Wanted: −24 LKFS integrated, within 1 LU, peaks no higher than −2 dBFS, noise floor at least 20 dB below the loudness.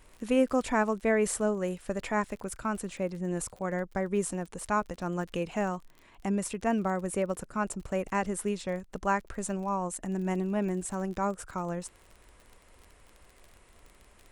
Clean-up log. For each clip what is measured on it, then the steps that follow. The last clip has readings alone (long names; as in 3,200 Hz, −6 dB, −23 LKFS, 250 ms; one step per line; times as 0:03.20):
crackle rate 35 per second; integrated loudness −31.5 LKFS; sample peak −15.0 dBFS; target loudness −24.0 LKFS
→ click removal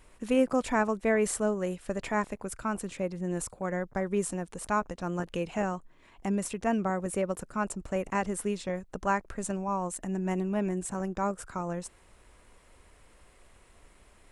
crackle rate 0 per second; integrated loudness −31.5 LKFS; sample peak −14.5 dBFS; target loudness −24.0 LKFS
→ level +7.5 dB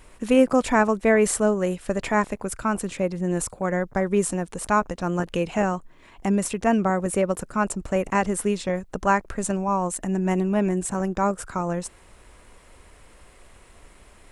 integrated loudness −24.0 LKFS; sample peak −7.0 dBFS; background noise floor −52 dBFS